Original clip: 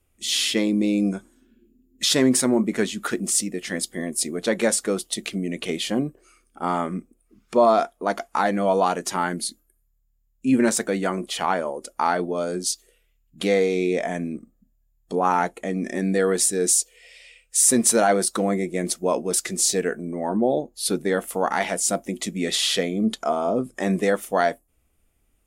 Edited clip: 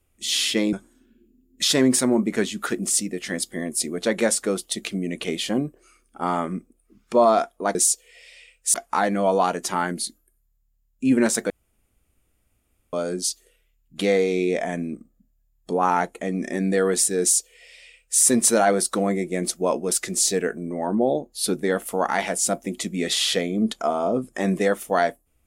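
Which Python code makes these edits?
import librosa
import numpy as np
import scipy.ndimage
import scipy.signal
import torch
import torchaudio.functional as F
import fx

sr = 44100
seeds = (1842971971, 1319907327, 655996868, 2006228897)

y = fx.edit(x, sr, fx.cut(start_s=0.73, length_s=0.41),
    fx.room_tone_fill(start_s=10.92, length_s=1.43),
    fx.duplicate(start_s=16.63, length_s=0.99, to_s=8.16), tone=tone)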